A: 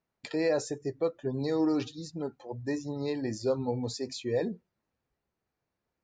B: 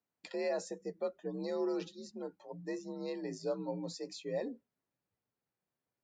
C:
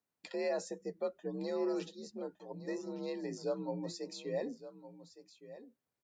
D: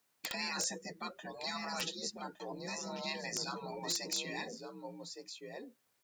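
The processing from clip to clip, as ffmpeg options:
ffmpeg -i in.wav -af "afreqshift=53,volume=-7.5dB" out.wav
ffmpeg -i in.wav -af "aecho=1:1:1163:0.188" out.wav
ffmpeg -i in.wav -af "tiltshelf=frequency=660:gain=-5.5,afftfilt=real='re*lt(hypot(re,im),0.0282)':imag='im*lt(hypot(re,im),0.0282)':win_size=1024:overlap=0.75,aeval=exprs='(mod(47.3*val(0)+1,2)-1)/47.3':channel_layout=same,volume=9dB" out.wav

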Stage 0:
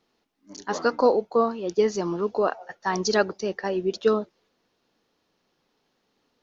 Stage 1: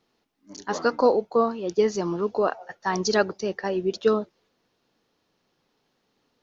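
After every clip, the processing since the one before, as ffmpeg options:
ffmpeg -i in.wav -af "equalizer=frequency=120:width=1.9:gain=4" out.wav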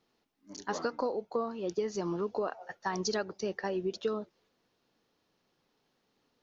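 ffmpeg -i in.wav -af "acompressor=threshold=-25dB:ratio=6,volume=-4dB" out.wav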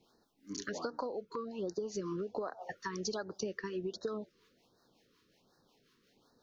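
ffmpeg -i in.wav -filter_complex "[0:a]acrossover=split=520[link_01][link_02];[link_01]aeval=exprs='val(0)*(1-0.5/2+0.5/2*cos(2*PI*5.5*n/s))':channel_layout=same[link_03];[link_02]aeval=exprs='val(0)*(1-0.5/2-0.5/2*cos(2*PI*5.5*n/s))':channel_layout=same[link_04];[link_03][link_04]amix=inputs=2:normalize=0,acompressor=threshold=-43dB:ratio=6,afftfilt=real='re*(1-between(b*sr/1024,660*pow(2700/660,0.5+0.5*sin(2*PI*1.3*pts/sr))/1.41,660*pow(2700/660,0.5+0.5*sin(2*PI*1.3*pts/sr))*1.41))':imag='im*(1-between(b*sr/1024,660*pow(2700/660,0.5+0.5*sin(2*PI*1.3*pts/sr))/1.41,660*pow(2700/660,0.5+0.5*sin(2*PI*1.3*pts/sr))*1.41))':win_size=1024:overlap=0.75,volume=8dB" out.wav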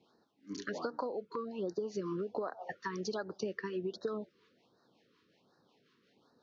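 ffmpeg -i in.wav -af "highpass=110,lowpass=4100,volume=1dB" out.wav

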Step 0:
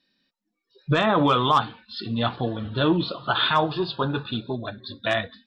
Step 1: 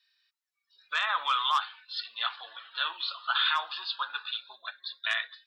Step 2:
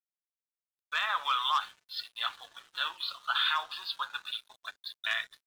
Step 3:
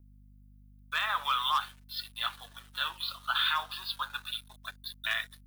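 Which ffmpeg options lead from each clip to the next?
ffmpeg -i in.wav -af "highpass=frequency=1200:width=0.5412,highpass=frequency=1200:width=1.3066,alimiter=limit=-16.5dB:level=0:latency=1:release=53" out.wav
ffmpeg -i in.wav -af "aeval=exprs='sgn(val(0))*max(abs(val(0))-0.00282,0)':channel_layout=same,volume=-1.5dB" out.wav
ffmpeg -i in.wav -filter_complex "[0:a]aeval=exprs='val(0)+0.00178*(sin(2*PI*50*n/s)+sin(2*PI*2*50*n/s)/2+sin(2*PI*3*50*n/s)/3+sin(2*PI*4*50*n/s)/4+sin(2*PI*5*50*n/s)/5)':channel_layout=same,acrossover=split=540|950[link_01][link_02][link_03];[link_03]aexciter=amount=1.8:drive=9.1:freq=9300[link_04];[link_01][link_02][link_04]amix=inputs=3:normalize=0" out.wav

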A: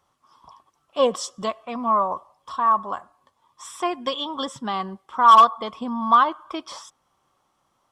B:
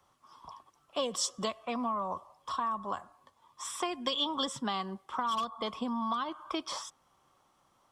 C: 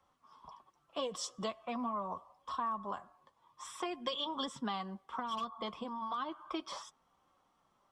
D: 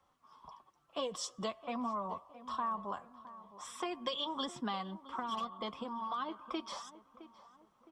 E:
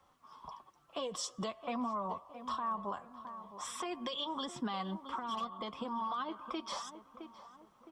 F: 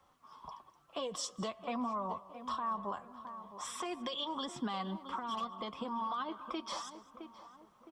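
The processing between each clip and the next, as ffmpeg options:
ffmpeg -i in.wav -filter_complex "[0:a]acrossover=split=430[link_01][link_02];[link_02]acompressor=threshold=-20dB:ratio=4[link_03];[link_01][link_03]amix=inputs=2:normalize=0,acrossover=split=190|2800[link_04][link_05][link_06];[link_04]alimiter=level_in=21.5dB:limit=-24dB:level=0:latency=1,volume=-21.5dB[link_07];[link_05]acompressor=threshold=-32dB:ratio=6[link_08];[link_07][link_08][link_06]amix=inputs=3:normalize=0" out.wav
ffmpeg -i in.wav -af "highshelf=frequency=5400:gain=-9,flanger=delay=3.7:depth=3:regen=-47:speed=0.41:shape=triangular" out.wav
ffmpeg -i in.wav -filter_complex "[0:a]asplit=2[link_01][link_02];[link_02]adelay=664,lowpass=frequency=1700:poles=1,volume=-15dB,asplit=2[link_03][link_04];[link_04]adelay=664,lowpass=frequency=1700:poles=1,volume=0.43,asplit=2[link_05][link_06];[link_06]adelay=664,lowpass=frequency=1700:poles=1,volume=0.43,asplit=2[link_07][link_08];[link_08]adelay=664,lowpass=frequency=1700:poles=1,volume=0.43[link_09];[link_01][link_03][link_05][link_07][link_09]amix=inputs=5:normalize=0" out.wav
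ffmpeg -i in.wav -af "alimiter=level_in=9.5dB:limit=-24dB:level=0:latency=1:release=241,volume=-9.5dB,volume=5dB" out.wav
ffmpeg -i in.wav -af "aecho=1:1:207:0.0891" out.wav

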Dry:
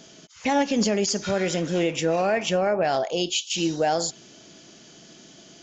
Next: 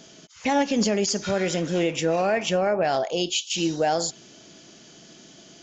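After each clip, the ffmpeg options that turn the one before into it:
ffmpeg -i in.wav -af anull out.wav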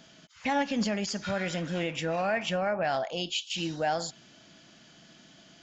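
ffmpeg -i in.wav -af "equalizer=frequency=400:width_type=o:width=0.67:gain=-10,equalizer=frequency=1600:width_type=o:width=0.67:gain=3,equalizer=frequency=6300:width_type=o:width=0.67:gain=-8,volume=-4dB" out.wav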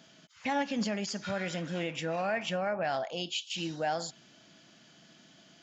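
ffmpeg -i in.wav -af "highpass=89,volume=-3dB" out.wav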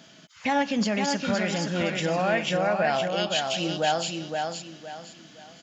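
ffmpeg -i in.wav -af "aecho=1:1:516|1032|1548|2064:0.596|0.185|0.0572|0.0177,volume=6.5dB" out.wav

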